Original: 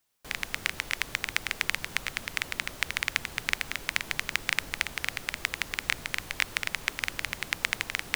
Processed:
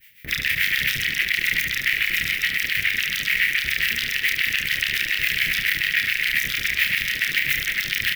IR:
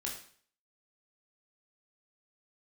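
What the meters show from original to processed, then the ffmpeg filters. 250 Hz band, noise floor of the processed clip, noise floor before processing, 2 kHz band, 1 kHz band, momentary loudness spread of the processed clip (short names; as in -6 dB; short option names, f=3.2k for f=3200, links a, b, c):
+4.5 dB, -30 dBFS, -45 dBFS, +11.0 dB, -3.5 dB, 2 LU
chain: -filter_complex "[0:a]asplit=2[a][b];[b]aecho=0:1:100|200|300|400:0.316|0.104|0.0344|0.0114[c];[a][c]amix=inputs=2:normalize=0,aeval=exprs='max(val(0),0)':c=same,highpass=f=57:p=1,equalizer=f=14k:w=2.7:g=4,acrossover=split=4100[d][e];[e]acompressor=threshold=-48dB:ratio=4:attack=1:release=60[f];[d][f]amix=inputs=2:normalize=0,afftfilt=real='re*lt(hypot(re,im),0.01)':imag='im*lt(hypot(re,im),0.01)':win_size=1024:overlap=0.75,acrossover=split=750[g][h];[g]aeval=exprs='val(0)*(1-1/2+1/2*cos(2*PI*7.1*n/s))':c=same[i];[h]aeval=exprs='val(0)*(1-1/2-1/2*cos(2*PI*7.1*n/s))':c=same[j];[i][j]amix=inputs=2:normalize=0,firequalizer=gain_entry='entry(160,0);entry(240,-8);entry(920,-29);entry(1900,15);entry(4000,-3);entry(7100,-11);entry(15000,3)':delay=0.05:min_phase=1,asplit=2[k][l];[l]aecho=0:1:30|72|130.8|213.1|328.4:0.631|0.398|0.251|0.158|0.1[m];[k][m]amix=inputs=2:normalize=0,alimiter=level_in=36dB:limit=-1dB:release=50:level=0:latency=1,volume=-7dB"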